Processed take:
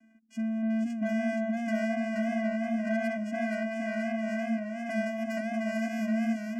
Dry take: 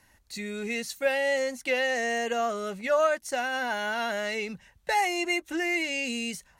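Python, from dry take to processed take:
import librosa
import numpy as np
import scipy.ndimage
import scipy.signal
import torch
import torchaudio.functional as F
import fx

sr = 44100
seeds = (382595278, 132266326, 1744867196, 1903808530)

y = fx.bass_treble(x, sr, bass_db=14, treble_db=-4, at=(0.62, 1.07))
y = fx.spec_gate(y, sr, threshold_db=-20, keep='strong')
y = fx.vocoder(y, sr, bands=4, carrier='square', carrier_hz=222.0)
y = 10.0 ** (-31.5 / 20.0) * np.tanh(y / 10.0 ** (-31.5 / 20.0))
y = fx.peak_eq(y, sr, hz=230.0, db=7.0, octaves=1.4)
y = fx.fixed_phaser(y, sr, hz=770.0, stages=8)
y = fx.echo_warbled(y, sr, ms=475, feedback_pct=53, rate_hz=2.8, cents=92, wet_db=-4)
y = y * 10.0 ** (2.0 / 20.0)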